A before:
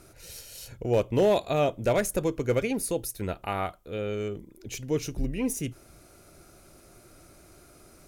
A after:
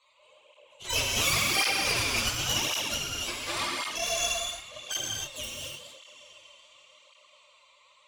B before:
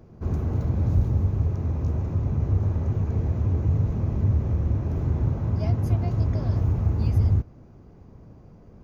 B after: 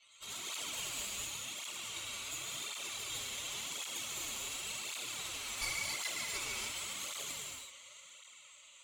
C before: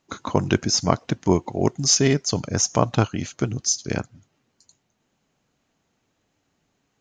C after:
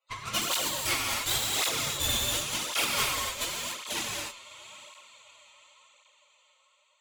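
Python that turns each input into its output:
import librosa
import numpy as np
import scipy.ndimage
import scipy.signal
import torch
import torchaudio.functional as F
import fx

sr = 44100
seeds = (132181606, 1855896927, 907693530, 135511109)

y = fx.octave_mirror(x, sr, pivot_hz=1200.0)
y = scipy.signal.sosfilt(scipy.signal.cheby1(5, 1.0, [550.0, 7600.0], 'bandpass', fs=sr, output='sos'), y)
y = fx.echo_diffused(y, sr, ms=691, feedback_pct=45, wet_db=-14.0)
y = 10.0 ** (-24.5 / 20.0) * np.tanh(y / 10.0 ** (-24.5 / 20.0))
y = fx.high_shelf(y, sr, hz=3300.0, db=9.0)
y = fx.fixed_phaser(y, sr, hz=1100.0, stages=8)
y = fx.cheby_harmonics(y, sr, harmonics=(6,), levels_db=(-7,), full_scale_db=-18.0)
y = fx.rev_gated(y, sr, seeds[0], gate_ms=320, shape='flat', drr_db=-3.0)
y = fx.flanger_cancel(y, sr, hz=0.91, depth_ms=7.0)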